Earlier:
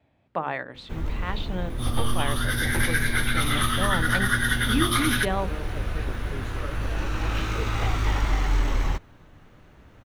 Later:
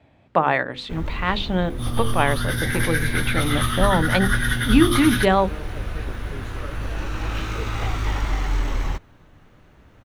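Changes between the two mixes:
speech +10.0 dB; second sound: remove high-pass 170 Hz 6 dB/octave

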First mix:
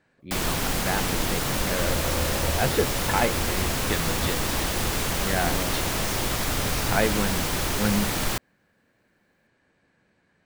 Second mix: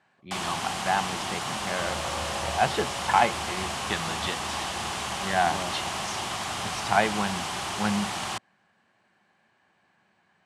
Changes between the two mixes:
first sound -5.0 dB; master: add cabinet simulation 130–9700 Hz, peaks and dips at 140 Hz -4 dB, 280 Hz -9 dB, 490 Hz -9 dB, 780 Hz +8 dB, 1.1 kHz +6 dB, 3 kHz +5 dB

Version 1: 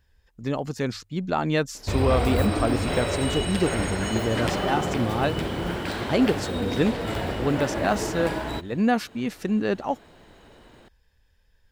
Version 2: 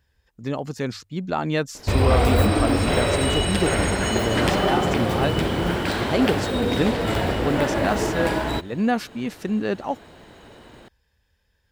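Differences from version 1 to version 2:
speech: add high-pass 53 Hz; background +5.5 dB

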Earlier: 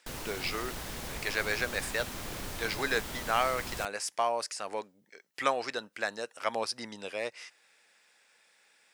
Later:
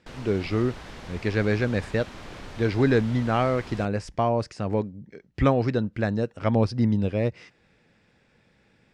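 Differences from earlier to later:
speech: remove high-pass 840 Hz 12 dB/octave; master: add Bessel low-pass 3.5 kHz, order 2

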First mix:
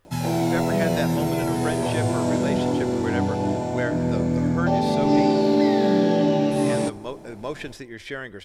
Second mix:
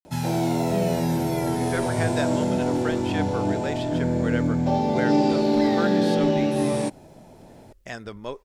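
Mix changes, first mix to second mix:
speech: entry +1.20 s; reverb: off

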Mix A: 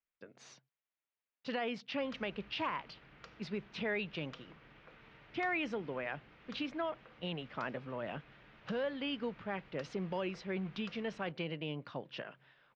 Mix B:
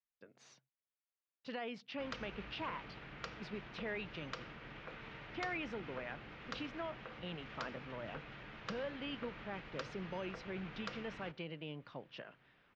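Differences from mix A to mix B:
speech -6.0 dB; background +8.5 dB

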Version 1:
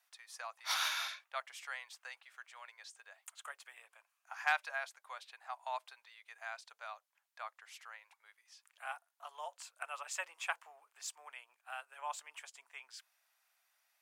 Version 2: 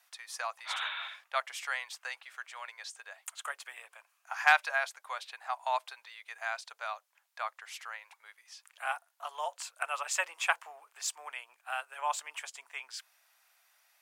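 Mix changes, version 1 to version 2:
speech +9.0 dB; background: add steep low-pass 3.8 kHz 96 dB/octave

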